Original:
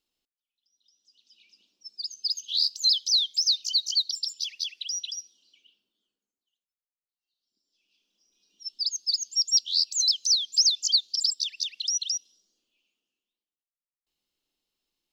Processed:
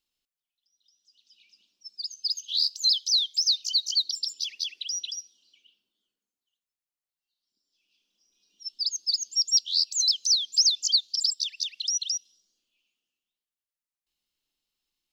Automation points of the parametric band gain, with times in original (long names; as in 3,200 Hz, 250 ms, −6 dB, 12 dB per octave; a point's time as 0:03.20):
parametric band 400 Hz 2.4 octaves
−7 dB
from 0:02.60 −13 dB
from 0:03.37 −2 dB
from 0:04.03 +8 dB
from 0:05.15 −3 dB
from 0:08.83 +3.5 dB
from 0:09.57 −5 dB
from 0:10.12 +1.5 dB
from 0:10.88 −6.5 dB